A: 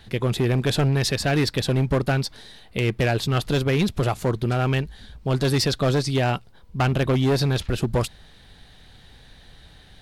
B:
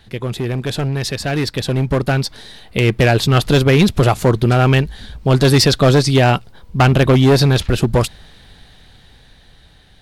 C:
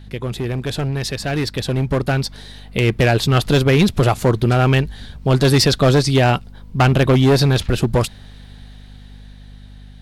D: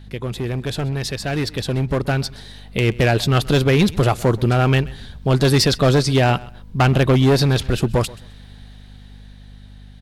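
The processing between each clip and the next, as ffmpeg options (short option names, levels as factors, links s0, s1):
-af "dynaudnorm=f=410:g=11:m=3.16"
-af "aeval=exprs='val(0)+0.0158*(sin(2*PI*50*n/s)+sin(2*PI*2*50*n/s)/2+sin(2*PI*3*50*n/s)/3+sin(2*PI*4*50*n/s)/4+sin(2*PI*5*50*n/s)/5)':c=same,volume=0.794"
-af "aecho=1:1:130|260:0.0891|0.0196,volume=0.841"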